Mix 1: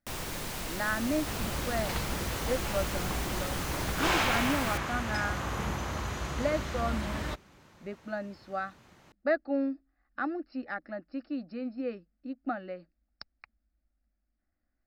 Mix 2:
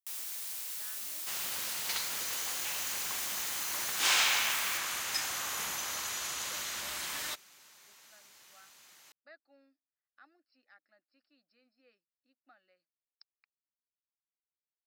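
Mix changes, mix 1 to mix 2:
speech -10.5 dB; second sound +11.5 dB; master: add differentiator

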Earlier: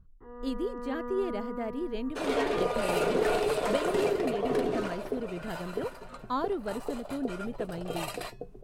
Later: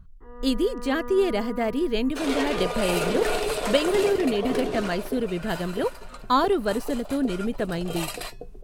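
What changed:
speech +9.0 dB; master: add treble shelf 2 kHz +8.5 dB

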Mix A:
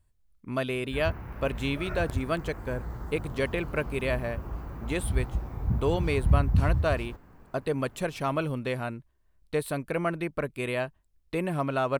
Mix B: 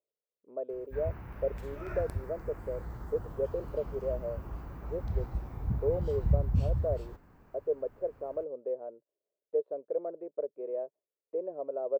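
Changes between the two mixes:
speech: add Butterworth band-pass 500 Hz, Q 2.5; background -4.5 dB

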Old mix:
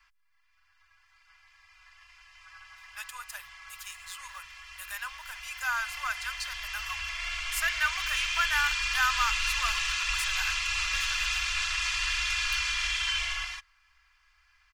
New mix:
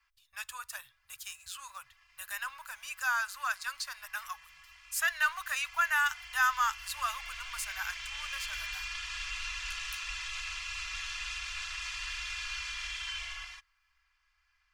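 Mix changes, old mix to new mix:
speech: entry -2.60 s; background -9.0 dB

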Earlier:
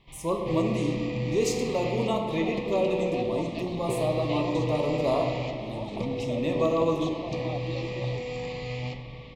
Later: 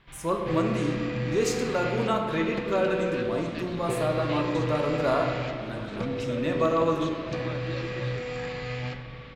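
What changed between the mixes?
second sound: add Butterworth band-stop 760 Hz, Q 1.7; master: remove Butterworth band-stop 1.5 kHz, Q 1.5

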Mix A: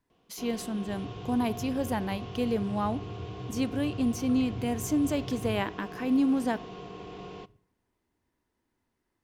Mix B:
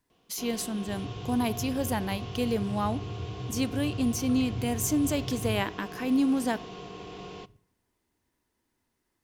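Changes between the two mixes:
second sound +3.5 dB; master: add treble shelf 3.4 kHz +8.5 dB

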